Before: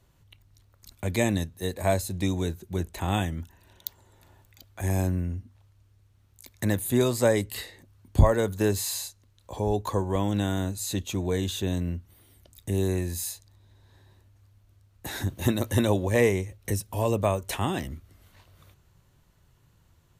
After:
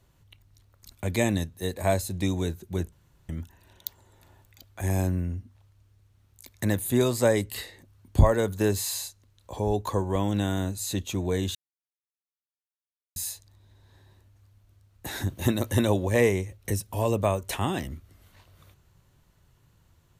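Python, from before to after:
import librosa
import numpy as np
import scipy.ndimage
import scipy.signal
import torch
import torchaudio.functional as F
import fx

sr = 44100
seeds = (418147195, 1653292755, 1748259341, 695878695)

y = fx.edit(x, sr, fx.room_tone_fill(start_s=2.92, length_s=0.37),
    fx.silence(start_s=11.55, length_s=1.61), tone=tone)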